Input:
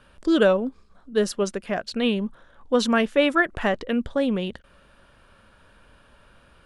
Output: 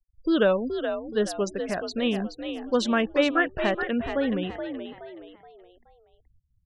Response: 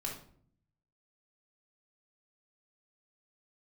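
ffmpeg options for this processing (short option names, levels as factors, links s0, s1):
-filter_complex "[0:a]afftfilt=real='re*gte(hypot(re,im),0.02)':imag='im*gte(hypot(re,im),0.02)':win_size=1024:overlap=0.75,asplit=5[s0][s1][s2][s3][s4];[s1]adelay=424,afreqshift=57,volume=0.398[s5];[s2]adelay=848,afreqshift=114,volume=0.148[s6];[s3]adelay=1272,afreqshift=171,volume=0.0543[s7];[s4]adelay=1696,afreqshift=228,volume=0.0202[s8];[s0][s5][s6][s7][s8]amix=inputs=5:normalize=0,volume=0.708"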